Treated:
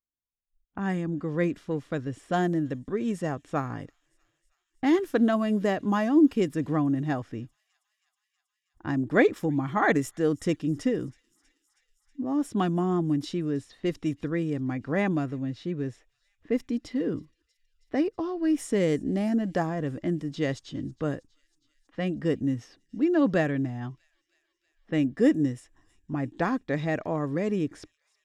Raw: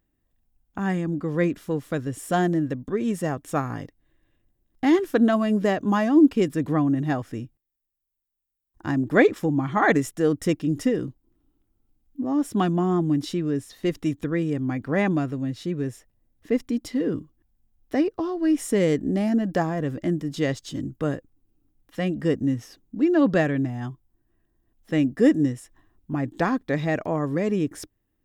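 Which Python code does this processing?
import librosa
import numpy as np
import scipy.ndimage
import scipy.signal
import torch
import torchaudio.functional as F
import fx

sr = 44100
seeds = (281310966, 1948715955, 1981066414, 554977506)

y = fx.env_lowpass(x, sr, base_hz=2100.0, full_db=-18.5)
y = fx.echo_wet_highpass(y, sr, ms=320, feedback_pct=73, hz=3900.0, wet_db=-22)
y = fx.noise_reduce_blind(y, sr, reduce_db=26)
y = F.gain(torch.from_numpy(y), -3.5).numpy()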